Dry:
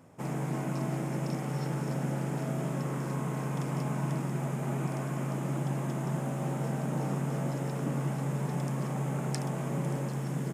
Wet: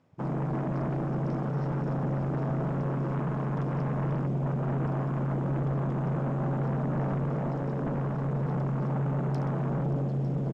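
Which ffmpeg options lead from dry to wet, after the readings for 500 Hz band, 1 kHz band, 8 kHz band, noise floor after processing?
+3.0 dB, +2.0 dB, below −20 dB, −31 dBFS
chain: -filter_complex "[0:a]lowpass=frequency=4300:width_type=q:width=1.5,afwtdn=0.0178,aeval=exprs='0.1*sin(PI/2*2.51*val(0)/0.1)':channel_layout=same,asplit=2[link_01][link_02];[link_02]aecho=0:1:902:0.2[link_03];[link_01][link_03]amix=inputs=2:normalize=0,volume=-6dB"

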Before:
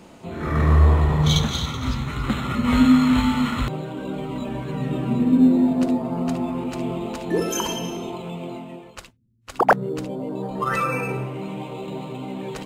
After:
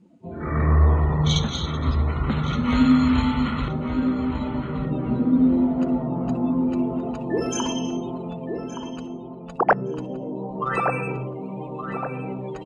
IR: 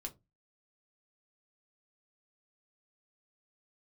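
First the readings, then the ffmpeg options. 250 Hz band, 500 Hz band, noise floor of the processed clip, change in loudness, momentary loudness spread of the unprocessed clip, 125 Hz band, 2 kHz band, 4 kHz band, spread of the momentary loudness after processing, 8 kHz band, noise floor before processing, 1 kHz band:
−1.0 dB, −1.0 dB, −36 dBFS, −1.5 dB, 16 LU, −1.0 dB, −2.0 dB, −2.5 dB, 14 LU, −3.0 dB, −46 dBFS, −1.5 dB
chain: -filter_complex "[0:a]afftdn=noise_reduction=22:noise_floor=-36,asplit=2[link_01][link_02];[link_02]adelay=1170,lowpass=frequency=1800:poles=1,volume=-6.5dB,asplit=2[link_03][link_04];[link_04]adelay=1170,lowpass=frequency=1800:poles=1,volume=0.46,asplit=2[link_05][link_06];[link_06]adelay=1170,lowpass=frequency=1800:poles=1,volume=0.46,asplit=2[link_07][link_08];[link_08]adelay=1170,lowpass=frequency=1800:poles=1,volume=0.46,asplit=2[link_09][link_10];[link_10]adelay=1170,lowpass=frequency=1800:poles=1,volume=0.46[link_11];[link_01][link_03][link_05][link_07][link_09][link_11]amix=inputs=6:normalize=0,aresample=22050,aresample=44100,volume=-2dB"

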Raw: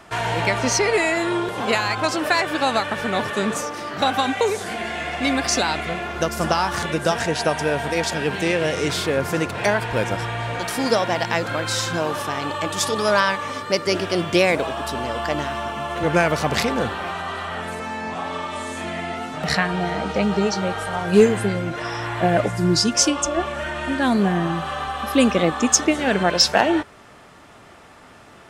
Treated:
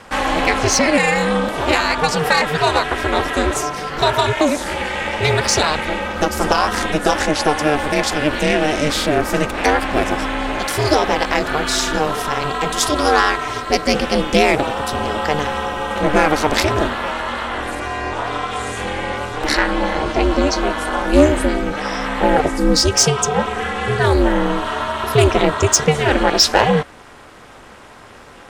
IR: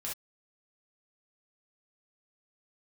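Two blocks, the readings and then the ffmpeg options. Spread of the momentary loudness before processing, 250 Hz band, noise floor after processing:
10 LU, +3.0 dB, −41 dBFS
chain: -af "acontrast=84,aeval=exprs='val(0)*sin(2*PI*150*n/s)':channel_layout=same,volume=1dB"

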